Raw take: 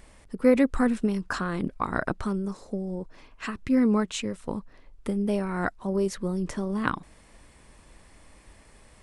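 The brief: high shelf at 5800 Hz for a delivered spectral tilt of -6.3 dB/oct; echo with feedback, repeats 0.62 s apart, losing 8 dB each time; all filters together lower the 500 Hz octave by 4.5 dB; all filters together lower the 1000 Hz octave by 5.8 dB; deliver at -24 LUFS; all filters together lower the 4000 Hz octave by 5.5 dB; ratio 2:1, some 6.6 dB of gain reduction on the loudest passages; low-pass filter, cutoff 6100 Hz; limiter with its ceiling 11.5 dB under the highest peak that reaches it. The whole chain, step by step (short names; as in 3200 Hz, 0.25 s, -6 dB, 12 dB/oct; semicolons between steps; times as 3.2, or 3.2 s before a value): LPF 6100 Hz; bell 500 Hz -4 dB; bell 1000 Hz -6 dB; bell 4000 Hz -4 dB; high shelf 5800 Hz -6.5 dB; compressor 2:1, threshold -30 dBFS; limiter -26.5 dBFS; feedback echo 0.62 s, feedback 40%, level -8 dB; gain +12 dB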